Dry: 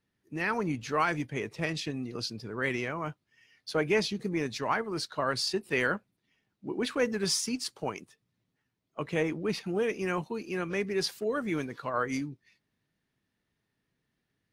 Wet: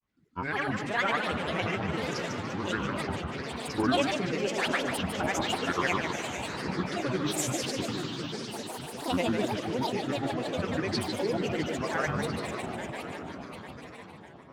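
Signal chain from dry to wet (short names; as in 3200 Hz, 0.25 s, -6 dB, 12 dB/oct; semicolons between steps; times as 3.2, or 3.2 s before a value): Bessel low-pass 7200 Hz, order 2; swelling echo 0.122 s, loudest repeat 5, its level -12.5 dB; grains, grains 20/s, pitch spread up and down by 12 st; warbling echo 0.147 s, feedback 31%, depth 168 cents, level -6 dB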